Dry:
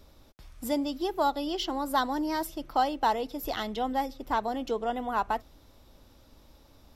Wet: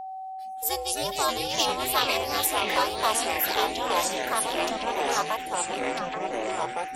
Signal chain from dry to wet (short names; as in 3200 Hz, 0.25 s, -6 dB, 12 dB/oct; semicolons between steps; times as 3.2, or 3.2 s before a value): spectral noise reduction 26 dB; delay with a stepping band-pass 0.416 s, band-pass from 3300 Hz, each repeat -1.4 oct, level -3.5 dB; ring modulator 220 Hz; tilt +4 dB/oct; echoes that change speed 82 ms, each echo -4 st, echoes 3; whine 760 Hz -37 dBFS; gain +3 dB